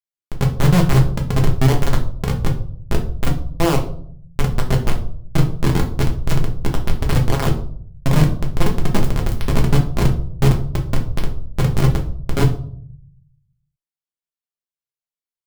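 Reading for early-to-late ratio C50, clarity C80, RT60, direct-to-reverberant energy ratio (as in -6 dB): 10.5 dB, 14.5 dB, 0.60 s, 0.5 dB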